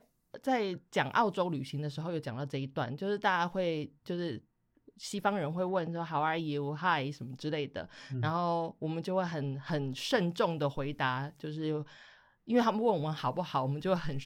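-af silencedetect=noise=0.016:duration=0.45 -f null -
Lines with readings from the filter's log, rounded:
silence_start: 4.38
silence_end: 5.03 | silence_duration: 0.66
silence_start: 11.82
silence_end: 12.49 | silence_duration: 0.67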